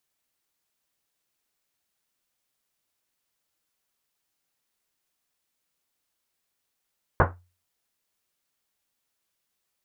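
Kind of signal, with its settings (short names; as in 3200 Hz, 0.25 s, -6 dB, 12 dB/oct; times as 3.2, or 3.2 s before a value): Risset drum, pitch 89 Hz, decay 0.36 s, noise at 790 Hz, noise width 1400 Hz, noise 60%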